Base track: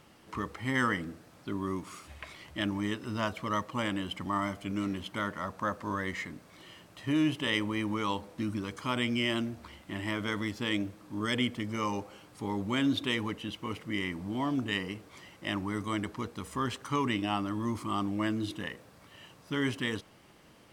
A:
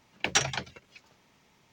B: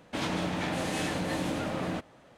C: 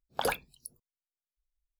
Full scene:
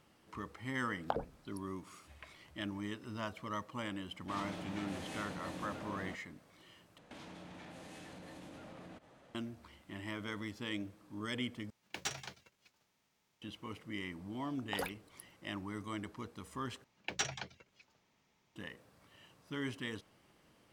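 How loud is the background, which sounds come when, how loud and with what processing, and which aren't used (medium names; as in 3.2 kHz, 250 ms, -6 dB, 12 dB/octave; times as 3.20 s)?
base track -9 dB
0.91 s: add C -1.5 dB + low-pass that closes with the level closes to 330 Hz, closed at -29 dBFS
4.15 s: add B -13.5 dB
6.98 s: replace with B -5.5 dB + compression 8:1, threshold -43 dBFS
11.70 s: replace with A -14.5 dB + formants flattened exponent 0.6
14.54 s: add C -10 dB
16.84 s: replace with A -11 dB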